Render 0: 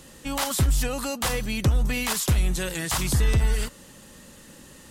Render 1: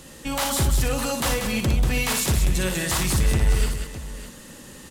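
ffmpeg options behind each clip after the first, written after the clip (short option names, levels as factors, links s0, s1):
-filter_complex "[0:a]asoftclip=type=tanh:threshold=0.0944,asplit=2[s0][s1];[s1]aecho=0:1:59|189|320|608:0.501|0.447|0.126|0.224[s2];[s0][s2]amix=inputs=2:normalize=0,volume=1.41"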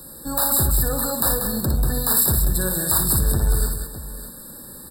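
-filter_complex "[0:a]acrossover=split=110[s0][s1];[s1]aexciter=amount=5.3:drive=6.9:freq=8900[s2];[s0][s2]amix=inputs=2:normalize=0,afftfilt=real='re*eq(mod(floor(b*sr/1024/1800),2),0)':imag='im*eq(mod(floor(b*sr/1024/1800),2),0)':win_size=1024:overlap=0.75"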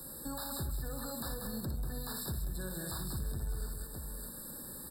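-filter_complex "[0:a]acrossover=split=5400[s0][s1];[s1]acompressor=threshold=0.0355:ratio=4:attack=1:release=60[s2];[s0][s2]amix=inputs=2:normalize=0,acrossover=split=330|1800[s3][s4][s5];[s4]alimiter=level_in=1.33:limit=0.0631:level=0:latency=1:release=277,volume=0.75[s6];[s3][s6][s5]amix=inputs=3:normalize=0,acompressor=threshold=0.02:ratio=2.5,volume=0.501"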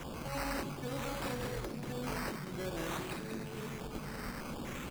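-af "tiltshelf=f=970:g=4,afftfilt=real='re*lt(hypot(re,im),0.0794)':imag='im*lt(hypot(re,im),0.0794)':win_size=1024:overlap=0.75,acrusher=samples=10:mix=1:aa=0.000001:lfo=1:lforange=6:lforate=0.53,volume=1.68"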